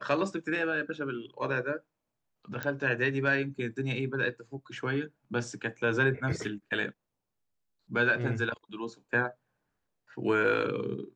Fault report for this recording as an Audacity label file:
2.630000	2.630000	click −18 dBFS

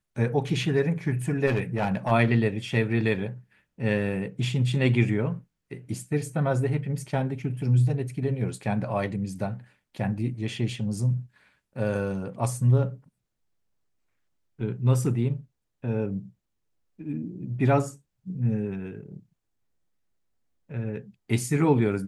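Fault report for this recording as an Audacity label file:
1.460000	2.120000	clipping −20 dBFS

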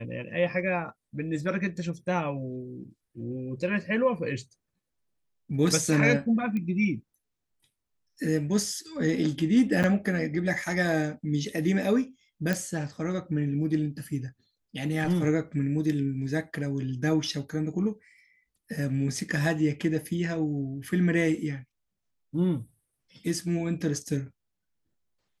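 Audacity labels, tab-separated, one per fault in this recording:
6.570000	6.570000	click −22 dBFS
9.830000	9.840000	drop-out 8.1 ms
12.530000	12.530000	click −13 dBFS

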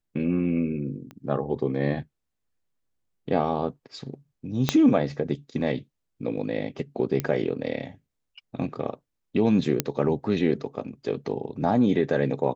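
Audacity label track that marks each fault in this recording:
1.110000	1.110000	click −28 dBFS
4.690000	4.690000	click −6 dBFS
7.200000	7.200000	click −12 dBFS
9.800000	9.800000	click −5 dBFS

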